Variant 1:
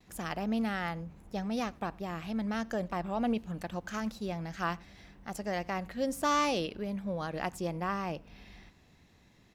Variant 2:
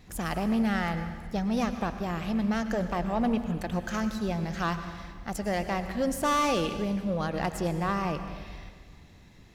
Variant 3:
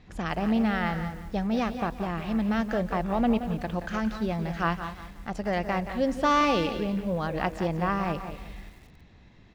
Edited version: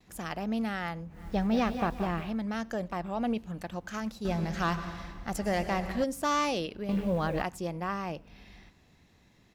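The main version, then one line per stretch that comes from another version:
1
1.22–2.26 from 3, crossfade 0.24 s
4.25–6.04 from 2
6.89–7.42 from 3

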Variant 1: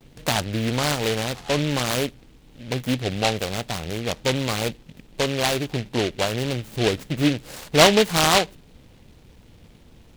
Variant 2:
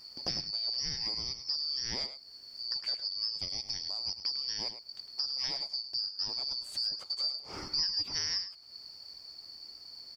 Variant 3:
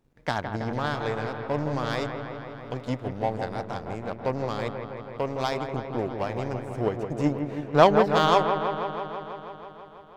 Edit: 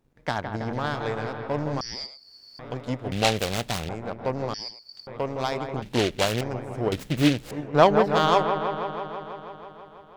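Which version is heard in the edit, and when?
3
1.81–2.59 from 2
3.12–3.89 from 1
4.54–5.07 from 2
5.82–6.41 from 1
6.92–7.51 from 1

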